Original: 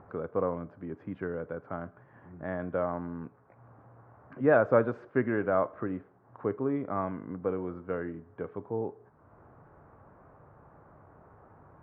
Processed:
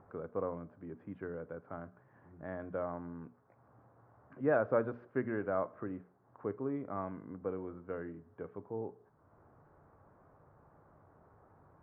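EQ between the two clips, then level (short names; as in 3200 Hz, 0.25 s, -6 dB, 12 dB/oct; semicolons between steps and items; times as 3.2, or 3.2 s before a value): air absorption 210 m; notches 60/120/180/240 Hz; -6.5 dB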